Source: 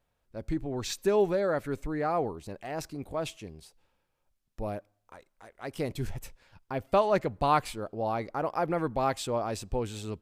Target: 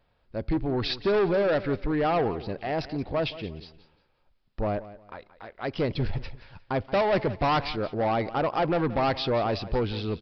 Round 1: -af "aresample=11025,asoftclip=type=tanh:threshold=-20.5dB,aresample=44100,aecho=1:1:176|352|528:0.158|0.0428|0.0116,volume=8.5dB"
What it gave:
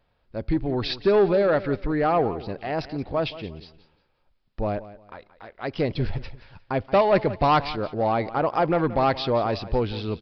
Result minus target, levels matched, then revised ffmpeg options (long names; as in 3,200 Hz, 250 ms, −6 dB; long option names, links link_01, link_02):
soft clipping: distortion −7 dB
-af "aresample=11025,asoftclip=type=tanh:threshold=-28.5dB,aresample=44100,aecho=1:1:176|352|528:0.158|0.0428|0.0116,volume=8.5dB"